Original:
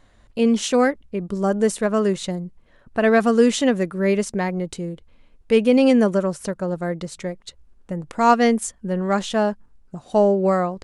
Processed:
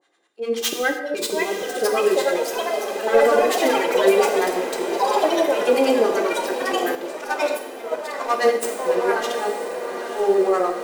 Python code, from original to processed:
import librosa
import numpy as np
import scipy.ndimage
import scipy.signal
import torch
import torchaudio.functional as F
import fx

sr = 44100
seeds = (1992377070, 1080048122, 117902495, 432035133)

y = fx.tracing_dist(x, sr, depth_ms=0.083)
y = scipy.signal.sosfilt(scipy.signal.butter(4, 290.0, 'highpass', fs=sr, output='sos'), y)
y = y + 0.57 * np.pad(y, (int(2.5 * sr / 1000.0), 0))[:len(y)]
y = fx.leveller(y, sr, passes=1)
y = fx.auto_swell(y, sr, attack_ms=166.0)
y = fx.harmonic_tremolo(y, sr, hz=9.8, depth_pct=100, crossover_hz=710.0)
y = fx.echo_pitch(y, sr, ms=720, semitones=4, count=3, db_per_echo=-3.0)
y = fx.echo_diffused(y, sr, ms=901, feedback_pct=68, wet_db=-10)
y = fx.rev_gated(y, sr, seeds[0], gate_ms=330, shape='falling', drr_db=3.0)
y = fx.upward_expand(y, sr, threshold_db=-26.0, expansion=1.5, at=(6.95, 8.63))